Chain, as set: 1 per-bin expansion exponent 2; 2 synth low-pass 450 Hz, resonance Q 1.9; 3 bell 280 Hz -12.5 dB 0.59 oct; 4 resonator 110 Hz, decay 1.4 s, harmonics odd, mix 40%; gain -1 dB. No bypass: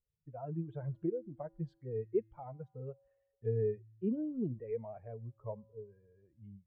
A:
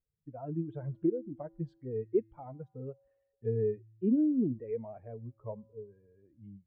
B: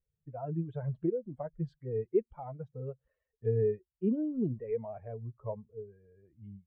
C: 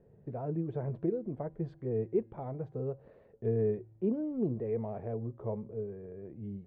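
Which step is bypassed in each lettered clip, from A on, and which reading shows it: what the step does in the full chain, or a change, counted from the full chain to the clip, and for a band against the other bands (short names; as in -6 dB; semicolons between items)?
3, 250 Hz band +6.5 dB; 4, loudness change +4.5 LU; 1, momentary loudness spread change -6 LU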